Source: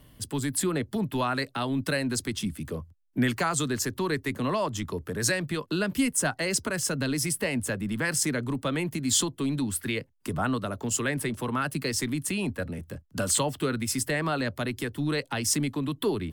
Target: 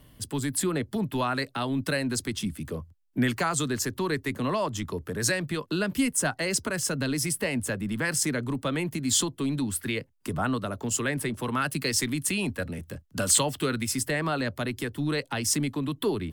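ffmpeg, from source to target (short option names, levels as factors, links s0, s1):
-filter_complex "[0:a]asettb=1/sr,asplit=3[s0][s1][s2];[s0]atrim=end=11.334[s3];[s1]atrim=start=11.33:end=13.87,asetpts=PTS-STARTPTS,afade=t=in:d=0.004:c=qsin,afade=t=out:st=2.536:d=0.004:c=qsin,adynamicequalizer=threshold=0.00631:dfrequency=1600:dqfactor=0.7:tfrequency=1600:tqfactor=0.7:attack=5:release=100:ratio=0.375:range=2:mode=boostabove:tftype=highshelf[s4];[s2]atrim=start=13.866[s5];[s3][s4]acrossfade=d=0.004:c1=hsin:c2=qsin[s6];[s6][s5]acrossfade=d=0.004:c1=qsin:c2=hsin"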